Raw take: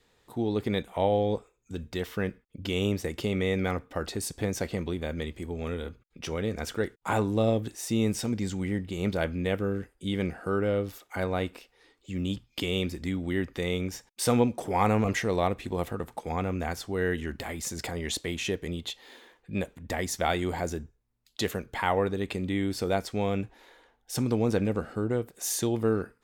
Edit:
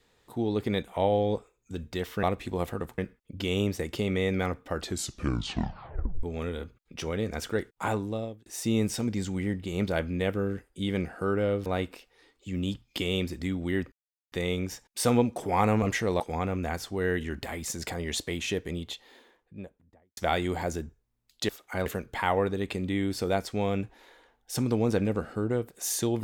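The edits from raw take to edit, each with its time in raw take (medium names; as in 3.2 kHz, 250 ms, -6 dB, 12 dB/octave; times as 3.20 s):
4.04 s: tape stop 1.44 s
6.98–7.71 s: fade out
10.91–11.28 s: move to 21.46 s
13.54 s: insert silence 0.40 s
15.42–16.17 s: move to 2.23 s
18.59–20.14 s: studio fade out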